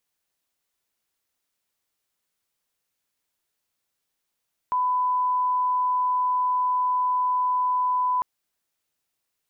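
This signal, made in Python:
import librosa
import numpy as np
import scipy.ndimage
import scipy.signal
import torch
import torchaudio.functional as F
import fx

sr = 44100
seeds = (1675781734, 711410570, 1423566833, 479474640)

y = fx.lineup_tone(sr, length_s=3.5, level_db=-20.0)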